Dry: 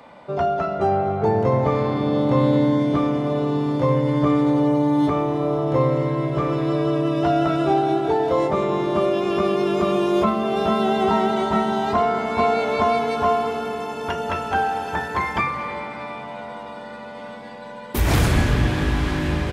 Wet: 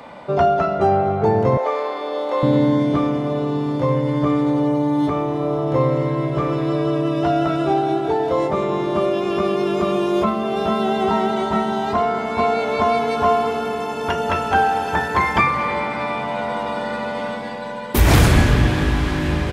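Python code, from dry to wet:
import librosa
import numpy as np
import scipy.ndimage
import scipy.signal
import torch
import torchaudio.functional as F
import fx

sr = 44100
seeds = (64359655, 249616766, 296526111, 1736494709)

y = fx.highpass(x, sr, hz=450.0, slope=24, at=(1.57, 2.43))
y = fx.rider(y, sr, range_db=10, speed_s=2.0)
y = y * librosa.db_to_amplitude(1.0)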